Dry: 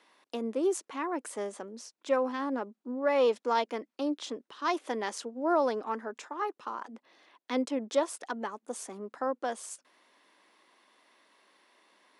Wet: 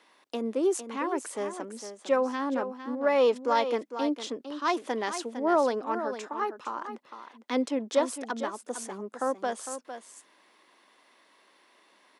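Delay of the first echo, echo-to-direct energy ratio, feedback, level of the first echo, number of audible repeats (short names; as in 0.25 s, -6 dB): 0.455 s, -10.0 dB, no steady repeat, -10.0 dB, 1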